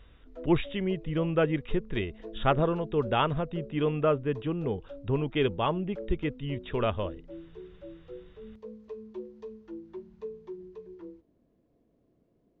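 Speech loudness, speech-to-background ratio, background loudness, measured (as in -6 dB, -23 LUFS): -30.0 LUFS, 15.5 dB, -45.5 LUFS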